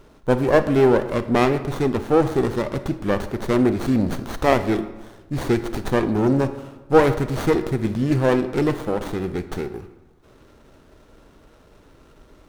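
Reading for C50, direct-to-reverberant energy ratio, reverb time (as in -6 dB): 12.0 dB, 11.0 dB, 1.2 s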